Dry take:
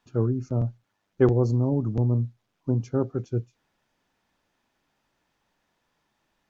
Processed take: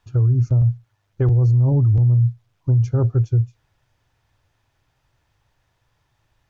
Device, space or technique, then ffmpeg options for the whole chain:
car stereo with a boomy subwoofer: -af "lowshelf=frequency=150:width_type=q:width=3:gain=10.5,alimiter=limit=-14.5dB:level=0:latency=1:release=34,volume=3.5dB"

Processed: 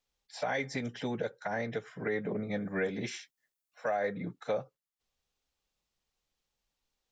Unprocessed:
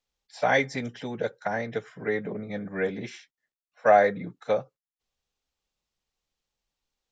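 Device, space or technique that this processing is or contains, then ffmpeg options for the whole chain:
stacked limiters: -filter_complex "[0:a]asettb=1/sr,asplit=3[link_01][link_02][link_03];[link_01]atrim=end=2.624[link_04];[link_02]atrim=start=2.62:end=3.97,asetpts=PTS-STARTPTS,afade=type=in:duration=0.004:curve=qsin,afade=type=out:start_time=1.346:duration=0.004:curve=qsin,highshelf=frequency=5700:gain=9[link_05];[link_03]atrim=start=3.966[link_06];[link_04][link_05]acrossfade=duration=0.004:curve1=hsin:curve2=qsin[link_07];[link_07][link_06]acrossfade=duration=0.004:curve1=qsin:curve2=hsin,alimiter=limit=-13.5dB:level=0:latency=1:release=340,alimiter=limit=-18dB:level=0:latency=1:release=105,alimiter=limit=-22.5dB:level=0:latency=1:release=223"

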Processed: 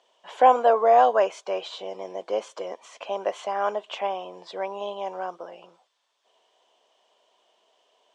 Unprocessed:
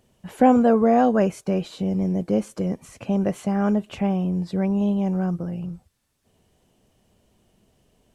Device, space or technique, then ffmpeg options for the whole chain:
phone speaker on a table: -af "highpass=frequency=470:width=0.5412,highpass=frequency=470:width=1.3066,equalizer=frequency=670:width_type=q:width=4:gain=4,equalizer=frequency=1000:width_type=q:width=4:gain=9,equalizer=frequency=3300:width_type=q:width=4:gain=9,lowpass=frequency=6900:width=0.5412,lowpass=frequency=6900:width=1.3066"

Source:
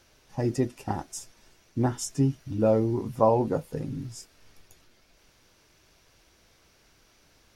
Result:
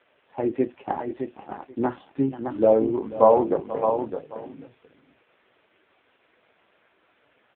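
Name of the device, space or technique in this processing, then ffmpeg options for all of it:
satellite phone: -filter_complex "[0:a]asplit=3[link_01][link_02][link_03];[link_01]afade=type=out:start_time=1.84:duration=0.02[link_04];[link_02]lowpass=frequency=11000:width=0.5412,lowpass=frequency=11000:width=1.3066,afade=type=in:start_time=1.84:duration=0.02,afade=type=out:start_time=2.76:duration=0.02[link_05];[link_03]afade=type=in:start_time=2.76:duration=0.02[link_06];[link_04][link_05][link_06]amix=inputs=3:normalize=0,highpass=320,lowpass=3000,aecho=1:1:486:0.158,aecho=1:1:613:0.447,volume=6.5dB" -ar 8000 -c:a libopencore_amrnb -b:a 5150

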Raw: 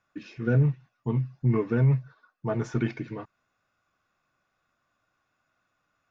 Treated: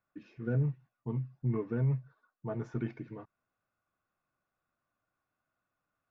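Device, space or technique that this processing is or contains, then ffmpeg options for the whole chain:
through cloth: -af "highshelf=frequency=2400:gain=-12,volume=-8dB"

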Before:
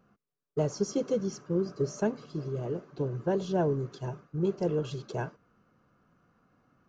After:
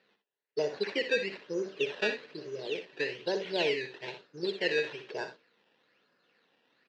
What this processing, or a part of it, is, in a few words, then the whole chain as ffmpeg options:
circuit-bent sampling toy: -af "acrusher=samples=14:mix=1:aa=0.000001:lfo=1:lforange=14:lforate=1.1,highpass=450,equalizer=frequency=450:width_type=q:width=4:gain=4,equalizer=frequency=710:width_type=q:width=4:gain=-5,equalizer=frequency=1200:width_type=q:width=4:gain=-10,equalizer=frequency=1800:width_type=q:width=4:gain=8,equalizer=frequency=2700:width_type=q:width=4:gain=8,equalizer=frequency=4100:width_type=q:width=4:gain=6,lowpass=frequency=4800:width=0.5412,lowpass=frequency=4800:width=1.3066,aecho=1:1:61|77:0.316|0.15"

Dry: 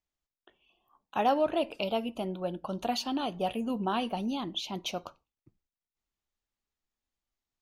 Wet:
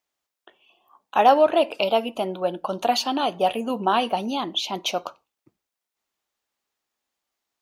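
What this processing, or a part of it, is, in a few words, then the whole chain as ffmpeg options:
filter by subtraction: -filter_complex "[0:a]asplit=2[link_01][link_02];[link_02]lowpass=660,volume=-1[link_03];[link_01][link_03]amix=inputs=2:normalize=0,volume=9dB"

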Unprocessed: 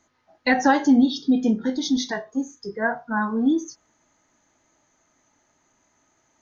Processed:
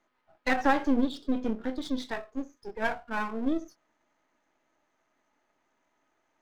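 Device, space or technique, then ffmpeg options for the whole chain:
crystal radio: -af "highpass=270,lowpass=2900,aeval=exprs='if(lt(val(0),0),0.251*val(0),val(0))':channel_layout=same,volume=-2.5dB"

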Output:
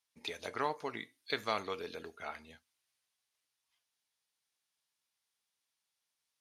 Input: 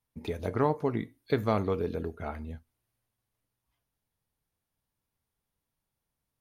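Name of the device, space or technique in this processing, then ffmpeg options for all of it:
piezo pickup straight into a mixer: -af "lowpass=5200,aderivative,volume=13dB"

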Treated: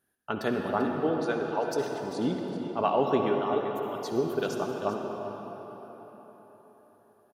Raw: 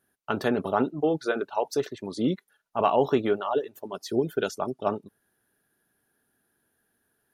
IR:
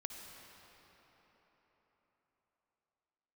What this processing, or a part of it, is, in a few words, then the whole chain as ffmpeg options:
cave: -filter_complex "[0:a]aecho=1:1:391:0.224[link_01];[1:a]atrim=start_sample=2205[link_02];[link_01][link_02]afir=irnorm=-1:irlink=0"

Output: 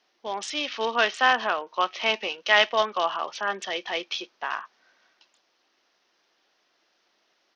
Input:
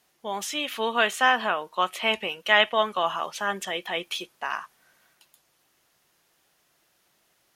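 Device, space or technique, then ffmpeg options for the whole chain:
Bluetooth headset: -af "highpass=frequency=240:width=0.5412,highpass=frequency=240:width=1.3066,aresample=16000,aresample=44100" -ar 48000 -c:a sbc -b:a 64k

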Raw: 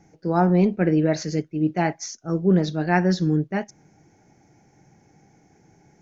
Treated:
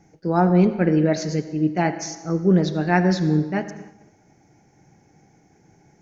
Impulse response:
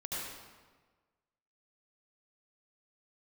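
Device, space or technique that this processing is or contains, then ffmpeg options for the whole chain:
keyed gated reverb: -filter_complex "[0:a]asplit=3[link_01][link_02][link_03];[1:a]atrim=start_sample=2205[link_04];[link_02][link_04]afir=irnorm=-1:irlink=0[link_05];[link_03]apad=whole_len=265436[link_06];[link_05][link_06]sidechaingate=range=-33dB:threshold=-54dB:ratio=16:detection=peak,volume=-12dB[link_07];[link_01][link_07]amix=inputs=2:normalize=0"

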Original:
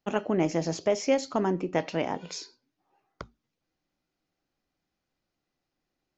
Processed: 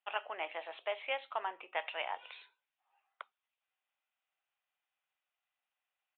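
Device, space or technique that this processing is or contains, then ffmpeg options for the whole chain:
musical greeting card: -af "aresample=8000,aresample=44100,highpass=frequency=750:width=0.5412,highpass=frequency=750:width=1.3066,equalizer=frequency=2700:width_type=o:width=0.49:gain=5.5,volume=-4dB"

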